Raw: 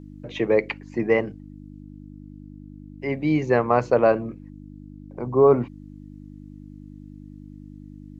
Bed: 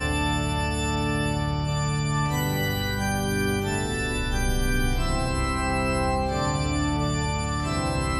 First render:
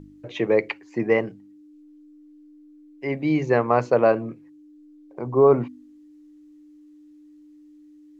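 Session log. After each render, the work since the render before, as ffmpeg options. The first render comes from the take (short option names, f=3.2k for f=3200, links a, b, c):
-af "bandreject=f=50:t=h:w=4,bandreject=f=100:t=h:w=4,bandreject=f=150:t=h:w=4,bandreject=f=200:t=h:w=4,bandreject=f=250:t=h:w=4"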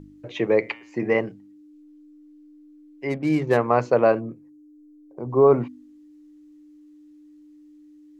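-filter_complex "[0:a]asettb=1/sr,asplit=3[a][b][c];[a]atrim=end=0.584[d];[b]atrim=start=0.58:end=1.15,asetpts=PTS-STARTPTS,afade=t=in:d=0.004:c=qsin,afade=t=out:st=0.566:d=0.004:c=qsin,bandreject=f=114.4:t=h:w=4,bandreject=f=228.8:t=h:w=4,bandreject=f=343.2:t=h:w=4,bandreject=f=457.6:t=h:w=4,bandreject=f=572:t=h:w=4,bandreject=f=686.4:t=h:w=4,bandreject=f=800.8:t=h:w=4,bandreject=f=915.2:t=h:w=4,bandreject=f=1.0296k:t=h:w=4,bandreject=f=1.144k:t=h:w=4,bandreject=f=1.2584k:t=h:w=4,bandreject=f=1.3728k:t=h:w=4,bandreject=f=1.4872k:t=h:w=4,bandreject=f=1.6016k:t=h:w=4,bandreject=f=1.716k:t=h:w=4,bandreject=f=1.8304k:t=h:w=4,bandreject=f=1.9448k:t=h:w=4,bandreject=f=2.0592k:t=h:w=4,bandreject=f=2.1736k:t=h:w=4,bandreject=f=2.288k:t=h:w=4,bandreject=f=2.4024k:t=h:w=4,bandreject=f=2.5168k:t=h:w=4,bandreject=f=2.6312k:t=h:w=4,bandreject=f=2.7456k:t=h:w=4,bandreject=f=2.86k:t=h:w=4,bandreject=f=2.9744k:t=h:w=4,bandreject=f=3.0888k:t=h:w=4,bandreject=f=3.2032k:t=h:w=4,bandreject=f=3.3176k:t=h:w=4,bandreject=f=3.432k:t=h:w=4,bandreject=f=3.5464k:t=h:w=4,bandreject=f=3.6608k:t=h:w=4,bandreject=f=3.7752k:t=h:w=4[e];[c]atrim=start=1.146[f];[d][e]acrossfade=d=0.004:c1=hsin:c2=qsin[g];[g][f]acrossfade=d=0.004:c1=qsin:c2=hsin,asplit=3[h][i][j];[h]afade=t=out:st=3.09:d=0.02[k];[i]adynamicsmooth=sensitivity=6.5:basefreq=1.2k,afade=t=in:st=3.09:d=0.02,afade=t=out:st=3.56:d=0.02[l];[j]afade=t=in:st=3.56:d=0.02[m];[k][l][m]amix=inputs=3:normalize=0,asplit=3[n][o][p];[n]afade=t=out:st=4.19:d=0.02[q];[o]equalizer=f=2.5k:w=0.54:g=-14,afade=t=in:st=4.19:d=0.02,afade=t=out:st=5.29:d=0.02[r];[p]afade=t=in:st=5.29:d=0.02[s];[q][r][s]amix=inputs=3:normalize=0"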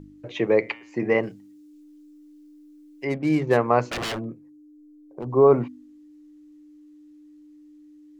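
-filter_complex "[0:a]asettb=1/sr,asplit=3[a][b][c];[a]atrim=end=1.234[d];[b]atrim=start=1.23:end=3.05,asetpts=PTS-STARTPTS,afade=t=in:d=0.004:c=qsin,afade=t=out:st=1.816:d=0.004:c=qsin,highshelf=f=3.2k:g=11.5[e];[c]atrim=start=3.046[f];[d][e]acrossfade=d=0.004:c1=hsin:c2=qsin[g];[g][f]acrossfade=d=0.004:c1=qsin:c2=hsin,asettb=1/sr,asplit=3[h][i][j];[h]atrim=end=3.894[k];[i]atrim=start=3.89:end=5.32,asetpts=PTS-STARTPTS,afade=t=in:d=0.004:c=qsin,afade=t=out:st=1.426:d=0.004:c=qsin,aeval=exprs='0.0631*(abs(mod(val(0)/0.0631+3,4)-2)-1)':c=same[l];[j]atrim=start=5.316[m];[k][l]acrossfade=d=0.004:c1=hsin:c2=qsin[n];[n][m]acrossfade=d=0.004:c1=qsin:c2=hsin"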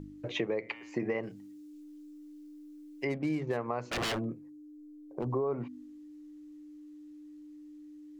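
-af "alimiter=limit=-12dB:level=0:latency=1:release=240,acompressor=threshold=-30dB:ratio=5"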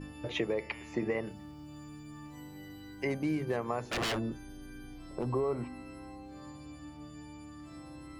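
-filter_complex "[1:a]volume=-26dB[a];[0:a][a]amix=inputs=2:normalize=0"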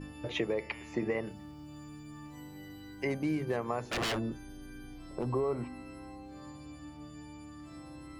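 -af anull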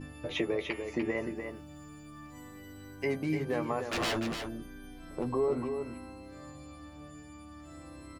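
-filter_complex "[0:a]asplit=2[a][b];[b]adelay=12,volume=-6dB[c];[a][c]amix=inputs=2:normalize=0,aecho=1:1:296:0.447"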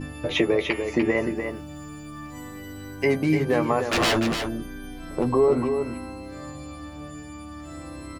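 -af "volume=10dB"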